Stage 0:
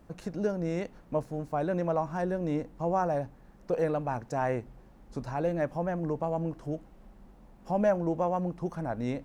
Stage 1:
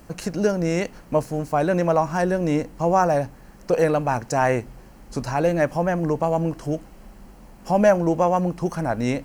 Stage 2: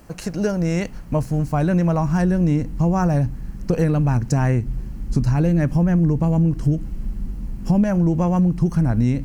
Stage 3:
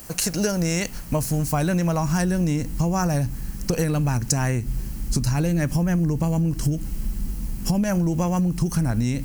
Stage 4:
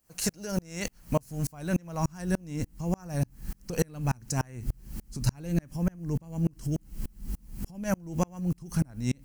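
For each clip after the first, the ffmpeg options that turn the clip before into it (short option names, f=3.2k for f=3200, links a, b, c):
-af "highshelf=f=2.2k:g=10.5,bandreject=f=3.6k:w=7,volume=8.5dB"
-af "asubboost=boost=10.5:cutoff=200,acompressor=threshold=-14dB:ratio=6"
-af "crystalizer=i=5.5:c=0,acompressor=threshold=-18dB:ratio=6"
-af "aeval=exprs='val(0)*pow(10,-35*if(lt(mod(-3.4*n/s,1),2*abs(-3.4)/1000),1-mod(-3.4*n/s,1)/(2*abs(-3.4)/1000),(mod(-3.4*n/s,1)-2*abs(-3.4)/1000)/(1-2*abs(-3.4)/1000))/20)':c=same"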